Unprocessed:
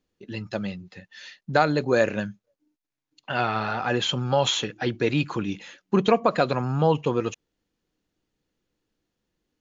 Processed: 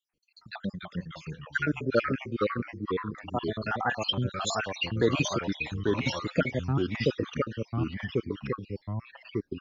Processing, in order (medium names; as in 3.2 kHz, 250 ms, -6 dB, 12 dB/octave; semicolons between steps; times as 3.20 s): random holes in the spectrogram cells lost 74%; ever faster or slower copies 228 ms, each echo -2 st, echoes 3